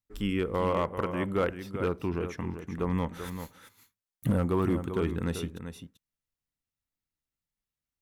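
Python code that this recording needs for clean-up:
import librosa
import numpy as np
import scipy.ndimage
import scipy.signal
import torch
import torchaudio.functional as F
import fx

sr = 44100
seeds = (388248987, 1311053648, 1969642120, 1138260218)

y = fx.fix_declip(x, sr, threshold_db=-19.0)
y = fx.fix_echo_inverse(y, sr, delay_ms=389, level_db=-9.5)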